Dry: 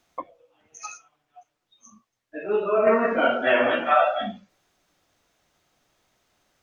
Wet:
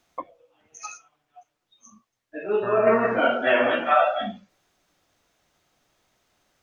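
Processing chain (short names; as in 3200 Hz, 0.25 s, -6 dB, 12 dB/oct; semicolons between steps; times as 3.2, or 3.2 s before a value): 2.62–3.18 buzz 120 Hz, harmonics 15, -34 dBFS -1 dB/oct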